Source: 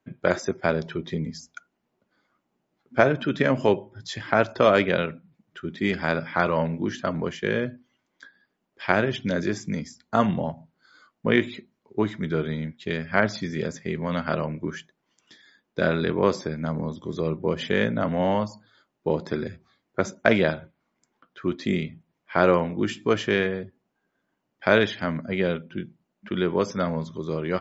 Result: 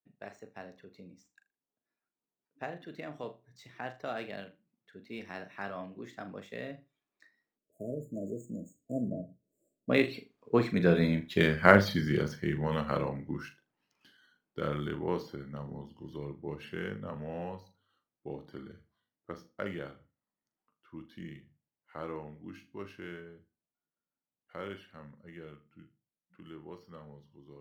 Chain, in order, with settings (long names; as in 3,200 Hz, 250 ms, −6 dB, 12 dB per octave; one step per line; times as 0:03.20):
running median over 5 samples
source passing by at 0:11.33, 42 m/s, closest 25 metres
flutter between parallel walls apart 6.9 metres, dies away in 0.24 s
time-frequency box erased 0:07.58–0:09.90, 680–6,500 Hz
level +3 dB